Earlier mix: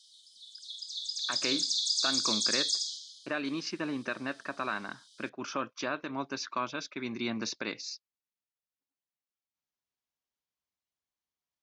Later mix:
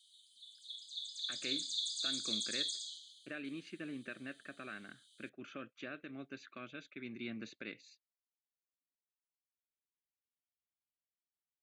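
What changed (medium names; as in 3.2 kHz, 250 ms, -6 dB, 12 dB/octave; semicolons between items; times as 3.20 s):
speech -8.5 dB; master: add static phaser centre 2.3 kHz, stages 4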